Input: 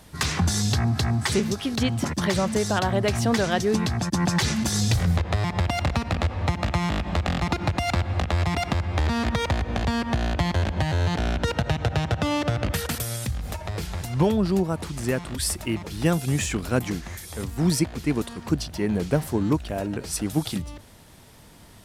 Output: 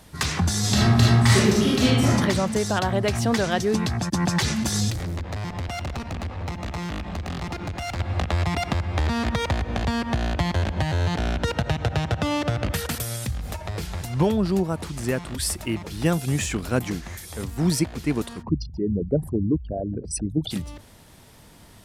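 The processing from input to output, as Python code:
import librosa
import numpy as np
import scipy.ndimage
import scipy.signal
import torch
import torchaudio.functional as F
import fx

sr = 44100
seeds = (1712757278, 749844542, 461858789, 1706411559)

y = fx.reverb_throw(x, sr, start_s=0.59, length_s=1.55, rt60_s=0.95, drr_db=-6.0)
y = fx.tube_stage(y, sr, drive_db=26.0, bias=0.4, at=(4.9, 8.0))
y = fx.envelope_sharpen(y, sr, power=3.0, at=(18.41, 20.5), fade=0.02)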